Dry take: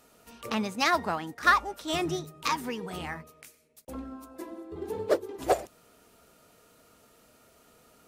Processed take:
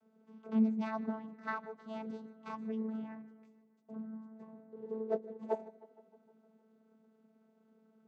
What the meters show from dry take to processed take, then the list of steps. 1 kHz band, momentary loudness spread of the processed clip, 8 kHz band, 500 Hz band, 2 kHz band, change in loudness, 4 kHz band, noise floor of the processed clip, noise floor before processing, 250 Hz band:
−15.5 dB, 20 LU, below −30 dB, −9.0 dB, −18.5 dB, −9.5 dB, below −25 dB, −70 dBFS, −61 dBFS, −0.5 dB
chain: spectral tilt −3 dB per octave
channel vocoder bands 16, saw 220 Hz
feedback echo with a low-pass in the loop 155 ms, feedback 64%, low-pass 4,400 Hz, level −19 dB
level −9 dB

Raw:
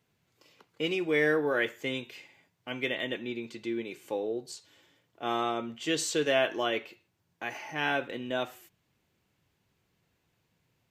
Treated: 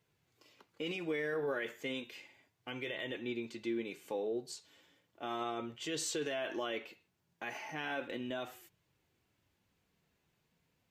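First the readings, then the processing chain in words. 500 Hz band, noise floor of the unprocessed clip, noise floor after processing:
−8.0 dB, −76 dBFS, −80 dBFS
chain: brickwall limiter −25 dBFS, peak gain reduction 11 dB
flanger 0.34 Hz, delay 1.9 ms, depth 3.2 ms, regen −58%
level +1 dB

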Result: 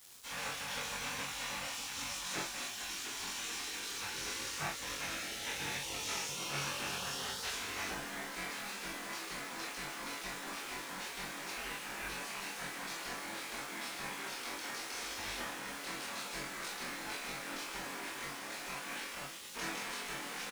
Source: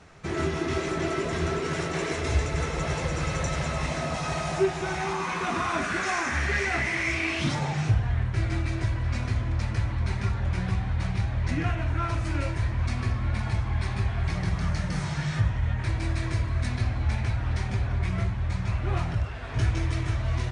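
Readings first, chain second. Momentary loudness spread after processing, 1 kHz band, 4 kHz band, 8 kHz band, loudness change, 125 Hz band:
4 LU, −10.0 dB, −1.0 dB, +0.5 dB, −11.5 dB, −30.0 dB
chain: linear delta modulator 64 kbit/s, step −37.5 dBFS
low-shelf EQ 260 Hz −10.5 dB
gate on every frequency bin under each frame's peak −15 dB weak
double-tracking delay 21 ms −3 dB
ambience of single reflections 28 ms −6 dB, 43 ms −5.5 dB
bit-depth reduction 8 bits, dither none
notch filter 620 Hz, Q 14
level −4.5 dB

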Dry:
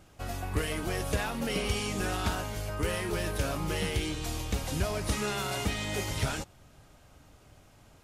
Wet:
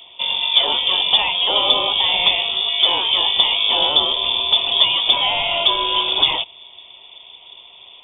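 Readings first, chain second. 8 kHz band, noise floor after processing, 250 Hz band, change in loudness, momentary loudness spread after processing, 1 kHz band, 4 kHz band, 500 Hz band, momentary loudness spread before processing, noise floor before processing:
below −40 dB, −44 dBFS, −3.0 dB, +17.5 dB, 3 LU, +14.0 dB, +26.5 dB, +6.5 dB, 4 LU, −58 dBFS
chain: voice inversion scrambler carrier 3,500 Hz
drawn EQ curve 190 Hz 0 dB, 980 Hz +12 dB, 1,600 Hz −14 dB, 2,400 Hz +5 dB
level +8.5 dB

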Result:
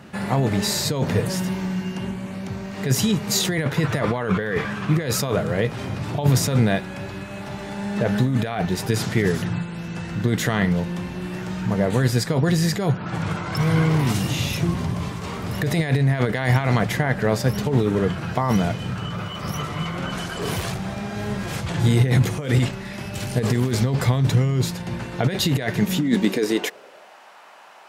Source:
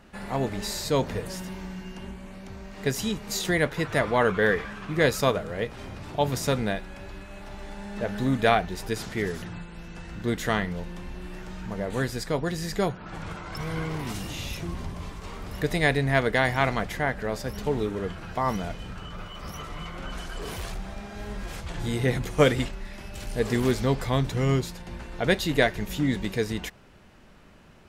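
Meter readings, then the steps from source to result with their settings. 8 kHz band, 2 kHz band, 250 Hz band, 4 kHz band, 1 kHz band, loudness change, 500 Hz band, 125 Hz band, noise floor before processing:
+8.0 dB, +1.0 dB, +7.5 dB, +5.5 dB, +1.5 dB, +5.0 dB, +1.5 dB, +10.0 dB, −44 dBFS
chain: compressor whose output falls as the input rises −28 dBFS, ratio −1
high-pass filter sweep 120 Hz → 810 Hz, 0:25.64–0:27.23
level +6 dB

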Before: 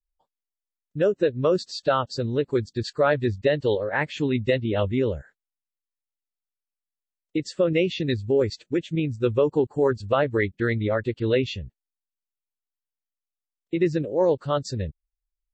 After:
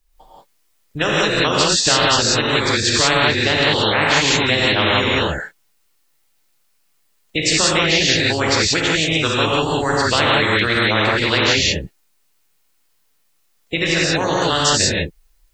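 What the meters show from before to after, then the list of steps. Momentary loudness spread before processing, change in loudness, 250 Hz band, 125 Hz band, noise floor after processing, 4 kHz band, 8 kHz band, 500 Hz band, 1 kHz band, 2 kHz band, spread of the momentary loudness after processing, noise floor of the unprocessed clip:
8 LU, +9.0 dB, +4.5 dB, +5.0 dB, −62 dBFS, +21.0 dB, can't be measured, +2.0 dB, +12.0 dB, +15.5 dB, 6 LU, below −85 dBFS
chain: reverb whose tail is shaped and stops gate 200 ms rising, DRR −7.5 dB
every bin compressed towards the loudest bin 4 to 1
level −1 dB

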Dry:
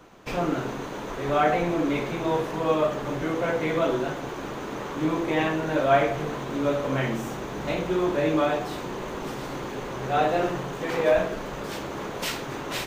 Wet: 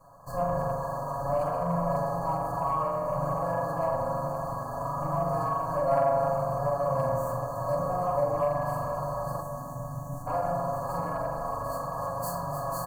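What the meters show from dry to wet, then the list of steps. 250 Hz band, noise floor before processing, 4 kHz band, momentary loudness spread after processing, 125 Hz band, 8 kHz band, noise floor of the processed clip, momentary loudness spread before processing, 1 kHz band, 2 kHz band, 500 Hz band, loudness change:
−10.0 dB, −35 dBFS, below −15 dB, 6 LU, +0.5 dB, can't be measured, −38 dBFS, 11 LU, +0.5 dB, −13.0 dB, −3.0 dB, −3.0 dB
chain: lower of the sound and its delayed copy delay 1.8 ms
spring reverb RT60 1.1 s, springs 41 ms, chirp 70 ms, DRR −2 dB
downward compressor 4 to 1, threshold −22 dBFS, peak gain reduction 7.5 dB
gain on a spectral selection 0:09.41–0:10.27, 300–5,100 Hz −27 dB
linear-phase brick-wall band-stop 1,700–4,200 Hz
low-shelf EQ 60 Hz −11 dB
phaser with its sweep stopped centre 1,500 Hz, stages 6
delay that swaps between a low-pass and a high-pass 151 ms, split 980 Hz, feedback 84%, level −9 dB
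soft clipping −17 dBFS, distortion −29 dB
comb filter 7.2 ms, depth 94%

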